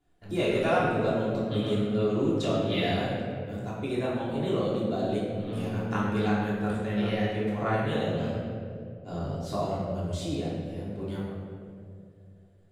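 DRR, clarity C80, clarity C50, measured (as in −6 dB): −9.0 dB, 1.5 dB, −0.5 dB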